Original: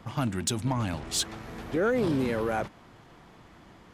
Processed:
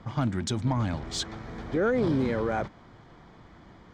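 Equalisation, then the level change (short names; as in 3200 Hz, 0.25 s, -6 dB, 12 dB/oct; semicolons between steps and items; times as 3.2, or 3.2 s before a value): running mean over 4 samples; low shelf 170 Hz +4 dB; notch 2700 Hz, Q 6.1; 0.0 dB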